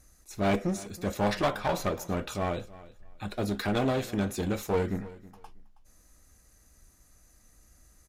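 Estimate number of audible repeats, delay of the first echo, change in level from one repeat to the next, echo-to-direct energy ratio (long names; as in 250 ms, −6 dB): 2, 321 ms, −13.5 dB, −19.0 dB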